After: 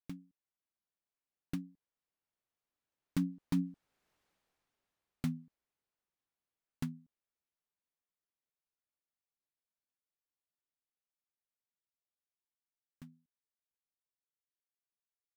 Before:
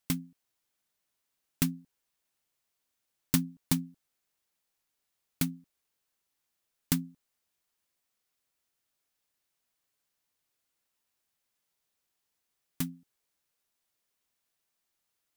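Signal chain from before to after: Doppler pass-by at 4.15 s, 18 m/s, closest 5.3 m; low-pass 1.5 kHz 6 dB/octave; peak limiter -32.5 dBFS, peak gain reduction 9 dB; trim +10.5 dB

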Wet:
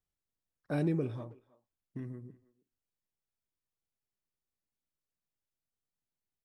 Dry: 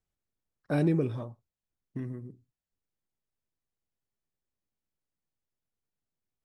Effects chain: speakerphone echo 320 ms, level -21 dB; trim -5 dB

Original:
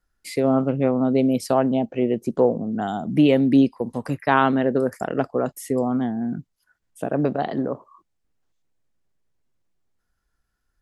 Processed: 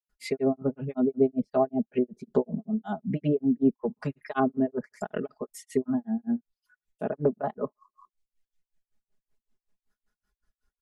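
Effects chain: comb 4.8 ms, depth 93%; granulator 190 ms, grains 5.3 per s, pitch spread up and down by 0 st; low-pass that closes with the level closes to 690 Hz, closed at -18 dBFS; reverb removal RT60 1.1 s; trim -3 dB

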